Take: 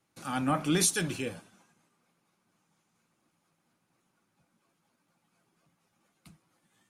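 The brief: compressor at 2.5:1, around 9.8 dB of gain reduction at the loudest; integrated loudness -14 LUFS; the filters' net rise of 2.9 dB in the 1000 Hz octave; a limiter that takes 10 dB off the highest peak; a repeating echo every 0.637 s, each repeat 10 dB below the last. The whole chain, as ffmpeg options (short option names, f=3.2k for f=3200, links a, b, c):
-af "equalizer=f=1k:t=o:g=4,acompressor=threshold=-37dB:ratio=2.5,alimiter=level_in=9.5dB:limit=-24dB:level=0:latency=1,volume=-9.5dB,aecho=1:1:637|1274|1911|2548:0.316|0.101|0.0324|0.0104,volume=30dB"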